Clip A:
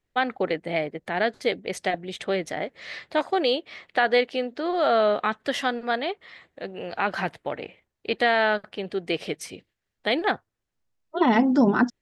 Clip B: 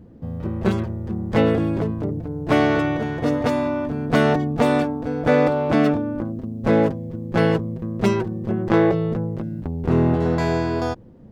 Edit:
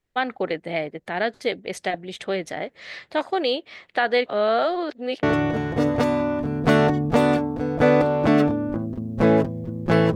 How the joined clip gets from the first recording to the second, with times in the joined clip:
clip A
0:04.26–0:05.23: reverse
0:05.23: continue with clip B from 0:02.69

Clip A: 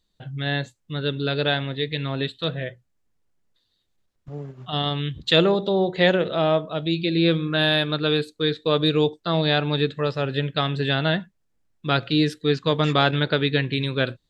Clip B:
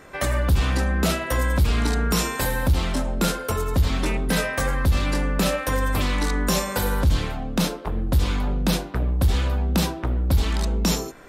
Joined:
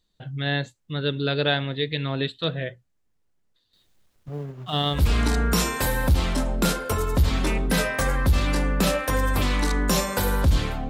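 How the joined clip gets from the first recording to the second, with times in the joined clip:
clip A
0:03.73–0:05.04: mu-law and A-law mismatch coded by mu
0:04.98: continue with clip B from 0:01.57, crossfade 0.12 s

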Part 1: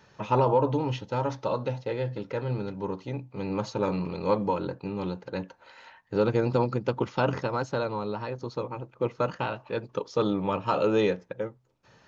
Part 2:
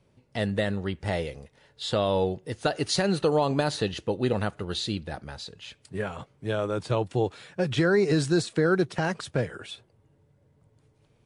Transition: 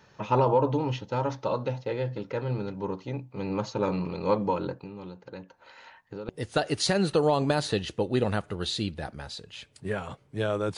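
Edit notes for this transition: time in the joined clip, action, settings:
part 1
0:04.73–0:06.29: downward compressor 3 to 1, threshold −41 dBFS
0:06.29: continue with part 2 from 0:02.38

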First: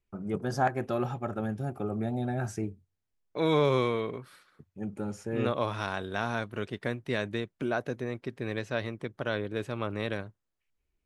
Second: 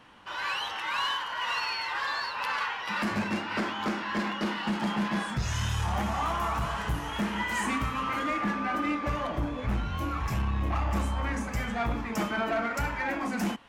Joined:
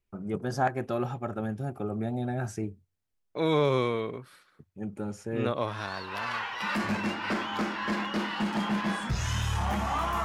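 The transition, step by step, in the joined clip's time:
first
0:06.07: continue with second from 0:02.34, crossfade 1.04 s linear

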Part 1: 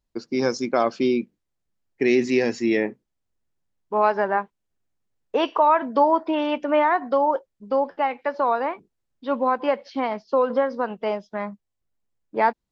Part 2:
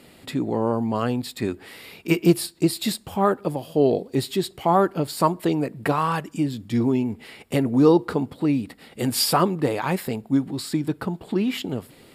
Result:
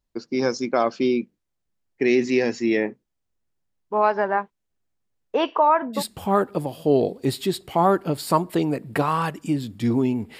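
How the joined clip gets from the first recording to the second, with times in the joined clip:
part 1
0:05.43–0:06.03: low-pass filter 5,100 Hz → 1,400 Hz
0:05.98: continue with part 2 from 0:02.88, crossfade 0.10 s

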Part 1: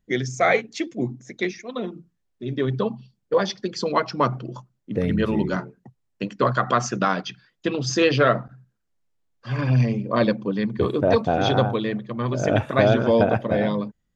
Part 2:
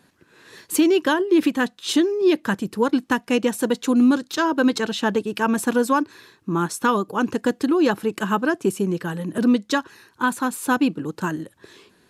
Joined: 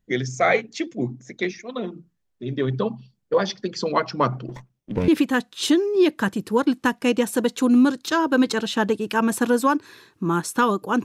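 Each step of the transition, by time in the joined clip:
part 1
0:04.49–0:05.08: lower of the sound and its delayed copy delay 0.34 ms
0:05.08: continue with part 2 from 0:01.34

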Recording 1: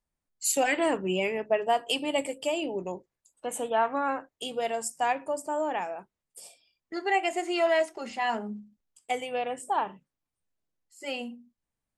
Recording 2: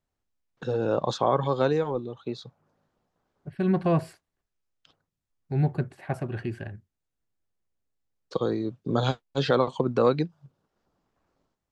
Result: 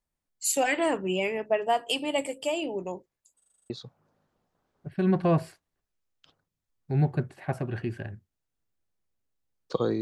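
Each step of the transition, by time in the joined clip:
recording 1
0:03.38: stutter in place 0.04 s, 8 plays
0:03.70: continue with recording 2 from 0:02.31

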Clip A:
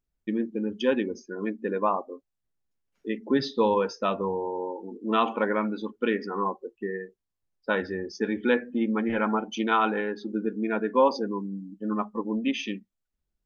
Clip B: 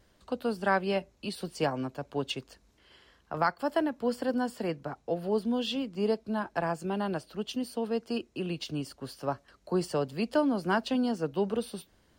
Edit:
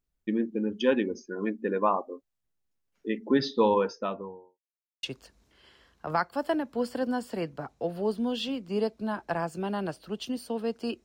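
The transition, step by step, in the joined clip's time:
clip A
0:03.67–0:04.59: fade out and dull
0:04.59–0:05.03: silence
0:05.03: continue with clip B from 0:02.30

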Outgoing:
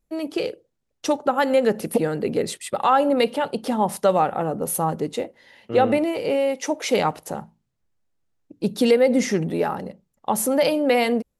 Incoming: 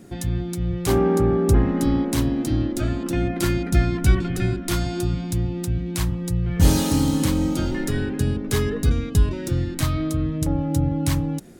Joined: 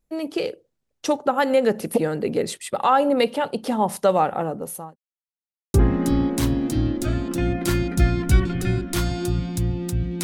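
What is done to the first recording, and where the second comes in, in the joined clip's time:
outgoing
0:04.38–0:04.96: fade out linear
0:04.96–0:05.74: silence
0:05.74: continue with incoming from 0:01.49

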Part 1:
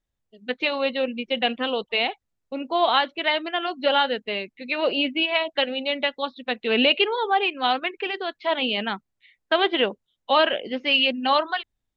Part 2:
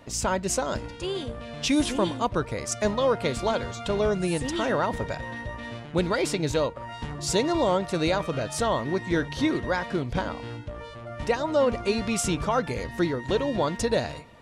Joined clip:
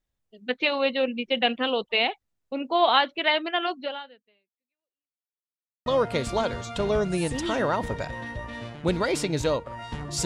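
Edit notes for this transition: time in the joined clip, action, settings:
part 1
0:03.71–0:05.32: fade out exponential
0:05.32–0:05.86: silence
0:05.86: continue with part 2 from 0:02.96

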